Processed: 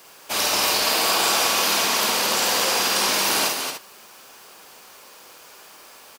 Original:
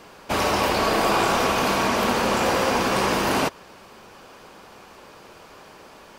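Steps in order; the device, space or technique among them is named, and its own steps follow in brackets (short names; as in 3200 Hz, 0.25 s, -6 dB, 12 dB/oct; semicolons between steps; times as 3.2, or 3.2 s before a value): loudspeakers at several distances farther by 17 m -3 dB, 77 m -5 dB, 100 m -9 dB; dynamic EQ 4200 Hz, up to +5 dB, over -38 dBFS, Q 1; turntable without a phono preamp (RIAA curve recording; white noise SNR 33 dB); gain -5.5 dB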